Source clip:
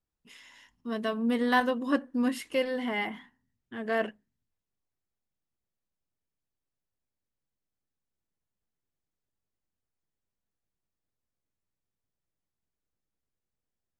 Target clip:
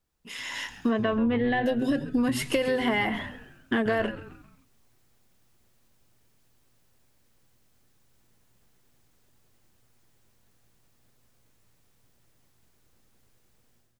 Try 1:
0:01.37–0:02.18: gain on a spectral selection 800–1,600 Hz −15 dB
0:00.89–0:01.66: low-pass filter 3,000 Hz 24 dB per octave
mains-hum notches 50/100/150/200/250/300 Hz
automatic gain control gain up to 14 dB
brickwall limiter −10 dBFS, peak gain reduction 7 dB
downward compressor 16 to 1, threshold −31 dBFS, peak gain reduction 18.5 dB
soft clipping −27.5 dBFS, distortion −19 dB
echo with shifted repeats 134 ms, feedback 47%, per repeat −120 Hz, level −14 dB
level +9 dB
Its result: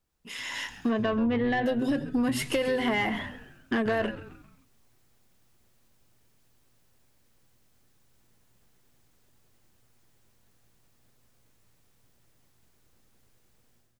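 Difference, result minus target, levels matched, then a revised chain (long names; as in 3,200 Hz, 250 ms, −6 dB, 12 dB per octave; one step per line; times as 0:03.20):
soft clipping: distortion +16 dB
0:01.37–0:02.18: gain on a spectral selection 800–1,600 Hz −15 dB
0:00.89–0:01.66: low-pass filter 3,000 Hz 24 dB per octave
mains-hum notches 50/100/150/200/250/300 Hz
automatic gain control gain up to 14 dB
brickwall limiter −10 dBFS, peak gain reduction 7 dB
downward compressor 16 to 1, threshold −31 dBFS, peak gain reduction 18.5 dB
soft clipping −18 dBFS, distortion −35 dB
echo with shifted repeats 134 ms, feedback 47%, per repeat −120 Hz, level −14 dB
level +9 dB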